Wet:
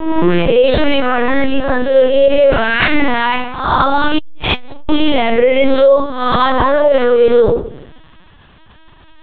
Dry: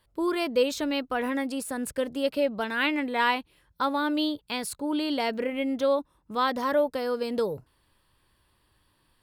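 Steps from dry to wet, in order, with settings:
peak hold with a rise ahead of every peak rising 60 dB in 0.68 s
in parallel at −2.5 dB: downward compressor 6 to 1, threshold −39 dBFS, peak gain reduction 19.5 dB
0:02.26–0:03.14: on the sum: flutter between parallel walls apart 6.3 metres, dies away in 0.46 s
convolution reverb RT60 0.65 s, pre-delay 6 ms, DRR 5 dB
linear-prediction vocoder at 8 kHz pitch kept
boost into a limiter +17 dB
0:04.18–0:04.89: saturating transformer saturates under 120 Hz
level −1 dB

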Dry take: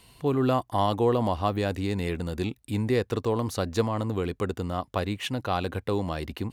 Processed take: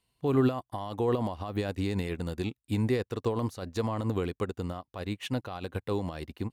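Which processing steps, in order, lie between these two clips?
brickwall limiter −21.5 dBFS, peak gain reduction 10.5 dB
expander for the loud parts 2.5 to 1, over −44 dBFS
level +5.5 dB

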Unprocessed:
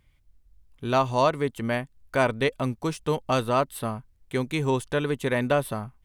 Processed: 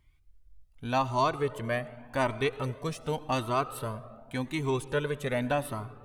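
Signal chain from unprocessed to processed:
on a send: bucket-brigade delay 113 ms, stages 1,024, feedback 78%, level −22.5 dB
on the sum: comb and all-pass reverb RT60 1.6 s, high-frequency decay 0.6×, pre-delay 50 ms, DRR 16.5 dB
flanger whose copies keep moving one way rising 0.87 Hz

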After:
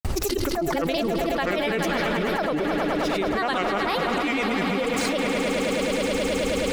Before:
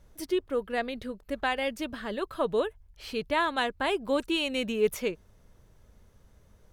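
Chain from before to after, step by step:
granular cloud, pitch spread up and down by 7 semitones
echo that builds up and dies away 106 ms, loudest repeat 5, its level −12 dB
envelope flattener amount 100%

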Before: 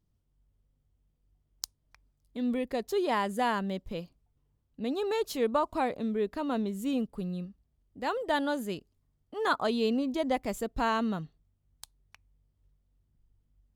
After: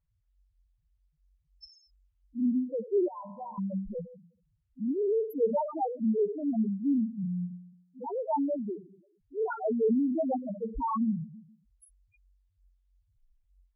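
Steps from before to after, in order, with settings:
parametric band 12,000 Hz +10.5 dB 0.85 octaves
four-comb reverb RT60 0.82 s, combs from 28 ms, DRR 7.5 dB
spectral peaks only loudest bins 1
0:03.08–0:03.58: tuned comb filter 55 Hz, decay 1.9 s, harmonics all, mix 80%
level +7.5 dB
Opus 256 kbit/s 48,000 Hz

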